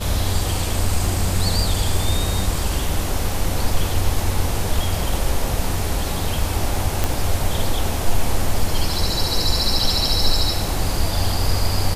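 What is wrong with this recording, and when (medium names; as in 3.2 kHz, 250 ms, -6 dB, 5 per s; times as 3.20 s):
7.04 s: pop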